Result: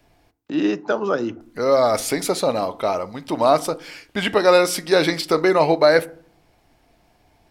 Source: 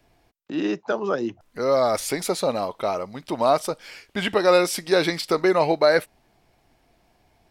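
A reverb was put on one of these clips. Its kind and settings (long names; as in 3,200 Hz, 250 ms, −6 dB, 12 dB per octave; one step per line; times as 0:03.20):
feedback delay network reverb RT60 0.51 s, low-frequency decay 1.55×, high-frequency decay 0.4×, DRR 14 dB
level +3 dB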